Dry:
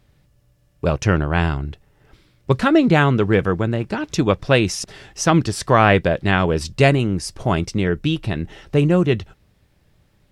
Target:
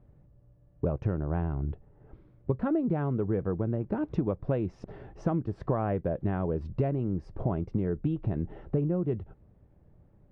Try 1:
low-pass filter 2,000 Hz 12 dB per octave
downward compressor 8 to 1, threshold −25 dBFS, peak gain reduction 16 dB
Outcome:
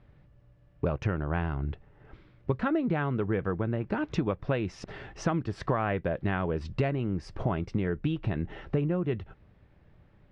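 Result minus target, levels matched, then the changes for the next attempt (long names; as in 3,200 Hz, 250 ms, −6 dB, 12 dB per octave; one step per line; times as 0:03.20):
2,000 Hz band +11.5 dB
change: low-pass filter 740 Hz 12 dB per octave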